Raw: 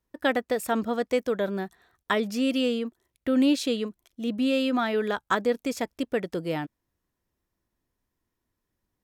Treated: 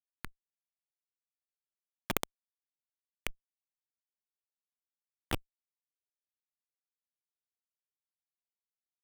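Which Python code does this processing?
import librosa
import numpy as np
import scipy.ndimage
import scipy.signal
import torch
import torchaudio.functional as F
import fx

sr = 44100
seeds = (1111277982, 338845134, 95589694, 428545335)

p1 = fx.recorder_agc(x, sr, target_db=-20.0, rise_db_per_s=55.0, max_gain_db=30)
p2 = fx.env_lowpass(p1, sr, base_hz=2600.0, full_db=-20.0)
p3 = p2 + fx.echo_wet_highpass(p2, sr, ms=67, feedback_pct=41, hz=2300.0, wet_db=-5.5, dry=0)
p4 = fx.schmitt(p3, sr, flips_db=-12.5)
p5 = fx.highpass(p4, sr, hz=290.0, slope=6)
p6 = fx.peak_eq(p5, sr, hz=2400.0, db=13.0, octaves=2.3)
p7 = fx.level_steps(p6, sr, step_db=23)
p8 = p6 + (p7 * 10.0 ** (-3.0 / 20.0))
p9 = 10.0 ** (-24.0 / 20.0) * np.tanh(p8 / 10.0 ** (-24.0 / 20.0))
p10 = fx.env_phaser(p9, sr, low_hz=420.0, high_hz=1800.0, full_db=-47.0)
p11 = fx.transient(p10, sr, attack_db=-10, sustain_db=9)
p12 = fx.clock_jitter(p11, sr, seeds[0], jitter_ms=0.031)
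y = p12 * 10.0 ** (17.0 / 20.0)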